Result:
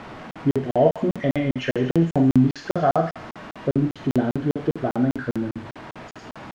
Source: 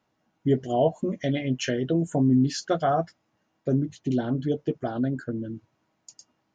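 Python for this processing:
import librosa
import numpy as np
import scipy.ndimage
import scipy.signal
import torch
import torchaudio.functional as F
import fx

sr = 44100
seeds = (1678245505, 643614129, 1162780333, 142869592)

p1 = x + 0.5 * 10.0 ** (-36.0 / 20.0) * np.sign(x)
p2 = fx.doubler(p1, sr, ms=48.0, db=-8)
p3 = fx.quant_dither(p2, sr, seeds[0], bits=6, dither='triangular')
p4 = p2 + F.gain(torch.from_numpy(p3), -5.0).numpy()
p5 = scipy.signal.sosfilt(scipy.signal.butter(2, 2100.0, 'lowpass', fs=sr, output='sos'), p4)
p6 = p5 + fx.echo_thinned(p5, sr, ms=80, feedback_pct=80, hz=1100.0, wet_db=-9, dry=0)
y = fx.buffer_crackle(p6, sr, first_s=0.31, period_s=0.2, block=2048, kind='zero')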